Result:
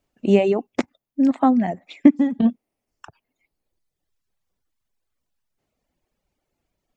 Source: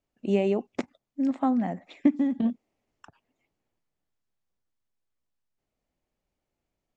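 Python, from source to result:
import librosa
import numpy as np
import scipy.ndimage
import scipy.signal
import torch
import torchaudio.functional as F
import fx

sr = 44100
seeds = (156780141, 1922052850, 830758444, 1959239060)

y = fx.dereverb_blind(x, sr, rt60_s=1.3)
y = y * librosa.db_to_amplitude(9.0)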